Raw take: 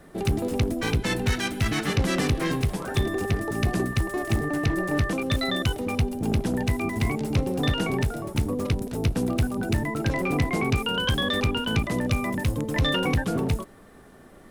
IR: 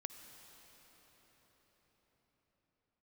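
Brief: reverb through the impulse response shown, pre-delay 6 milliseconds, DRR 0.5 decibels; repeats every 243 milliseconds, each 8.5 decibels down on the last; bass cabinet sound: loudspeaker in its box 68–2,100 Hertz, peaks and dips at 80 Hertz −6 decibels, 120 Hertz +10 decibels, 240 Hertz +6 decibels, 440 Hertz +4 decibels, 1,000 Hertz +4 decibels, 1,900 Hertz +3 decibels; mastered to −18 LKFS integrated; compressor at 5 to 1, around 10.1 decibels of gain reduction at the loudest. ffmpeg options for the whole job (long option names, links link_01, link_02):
-filter_complex "[0:a]acompressor=threshold=-30dB:ratio=5,aecho=1:1:243|486|729|972:0.376|0.143|0.0543|0.0206,asplit=2[link_01][link_02];[1:a]atrim=start_sample=2205,adelay=6[link_03];[link_02][link_03]afir=irnorm=-1:irlink=0,volume=2.5dB[link_04];[link_01][link_04]amix=inputs=2:normalize=0,highpass=frequency=68:width=0.5412,highpass=frequency=68:width=1.3066,equalizer=frequency=80:width_type=q:width=4:gain=-6,equalizer=frequency=120:width_type=q:width=4:gain=10,equalizer=frequency=240:width_type=q:width=4:gain=6,equalizer=frequency=440:width_type=q:width=4:gain=4,equalizer=frequency=1000:width_type=q:width=4:gain=4,equalizer=frequency=1900:width_type=q:width=4:gain=3,lowpass=frequency=2100:width=0.5412,lowpass=frequency=2100:width=1.3066,volume=10dB"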